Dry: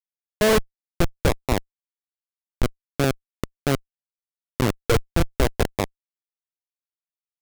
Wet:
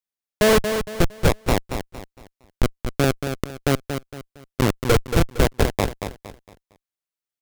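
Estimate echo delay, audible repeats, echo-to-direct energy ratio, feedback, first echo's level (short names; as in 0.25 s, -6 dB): 0.23 s, 3, -7.5 dB, 34%, -8.0 dB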